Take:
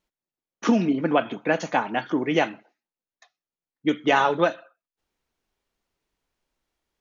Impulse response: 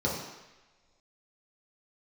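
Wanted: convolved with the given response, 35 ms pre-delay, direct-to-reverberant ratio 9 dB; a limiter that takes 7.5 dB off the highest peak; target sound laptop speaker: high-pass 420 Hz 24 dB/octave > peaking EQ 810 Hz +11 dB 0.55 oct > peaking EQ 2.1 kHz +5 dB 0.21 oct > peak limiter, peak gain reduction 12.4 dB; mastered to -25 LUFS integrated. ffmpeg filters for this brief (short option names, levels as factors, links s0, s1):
-filter_complex "[0:a]alimiter=limit=0.2:level=0:latency=1,asplit=2[s0][s1];[1:a]atrim=start_sample=2205,adelay=35[s2];[s1][s2]afir=irnorm=-1:irlink=0,volume=0.119[s3];[s0][s3]amix=inputs=2:normalize=0,highpass=f=420:w=0.5412,highpass=f=420:w=1.3066,equalizer=f=810:t=o:w=0.55:g=11,equalizer=f=2100:t=o:w=0.21:g=5,volume=1.68,alimiter=limit=0.178:level=0:latency=1"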